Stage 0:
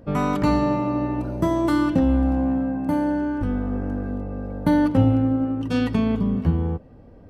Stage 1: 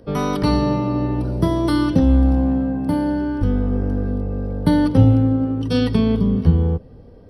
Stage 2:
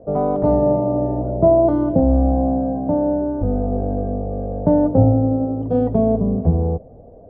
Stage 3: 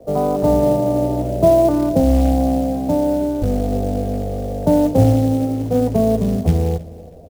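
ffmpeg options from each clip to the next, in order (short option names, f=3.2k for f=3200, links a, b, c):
-filter_complex "[0:a]superequalizer=7b=2:13b=2.24:14b=2.82:15b=0.282:16b=2.24,acrossover=split=200|990[a][b][c];[a]dynaudnorm=f=390:g=3:m=8dB[d];[d][b][c]amix=inputs=3:normalize=0"
-af "lowpass=f=670:t=q:w=8.2,volume=-2.5dB"
-filter_complex "[0:a]acrossover=split=190|210|800[a][b][c][d];[b]asoftclip=type=hard:threshold=-29dB[e];[a][e][c][d]amix=inputs=4:normalize=0,acrusher=bits=6:mode=log:mix=0:aa=0.000001,aecho=1:1:318|636:0.1|0.031,volume=1dB"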